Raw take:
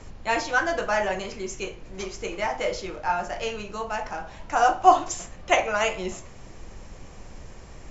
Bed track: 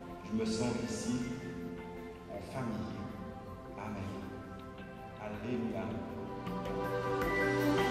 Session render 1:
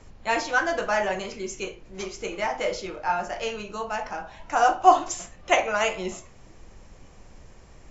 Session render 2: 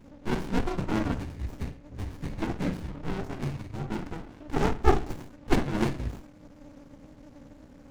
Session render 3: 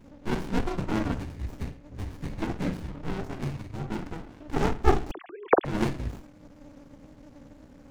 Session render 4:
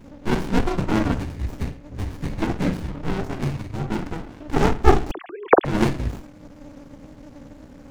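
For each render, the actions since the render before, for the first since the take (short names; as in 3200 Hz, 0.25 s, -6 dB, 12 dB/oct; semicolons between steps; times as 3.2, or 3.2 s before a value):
noise print and reduce 6 dB
frequency shift -310 Hz; running maximum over 65 samples
5.11–5.65 sine-wave speech
gain +7 dB; limiter -1 dBFS, peak gain reduction 1 dB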